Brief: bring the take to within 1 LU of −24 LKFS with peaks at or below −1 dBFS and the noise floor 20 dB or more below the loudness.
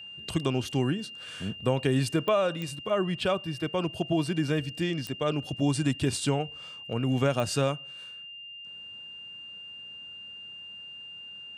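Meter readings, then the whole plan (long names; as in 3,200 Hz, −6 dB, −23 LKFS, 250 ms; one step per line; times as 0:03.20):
number of clicks 4; interfering tone 2,800 Hz; level of the tone −41 dBFS; integrated loudness −29.0 LKFS; sample peak −12.0 dBFS; target loudness −24.0 LKFS
→ click removal
notch filter 2,800 Hz, Q 30
level +5 dB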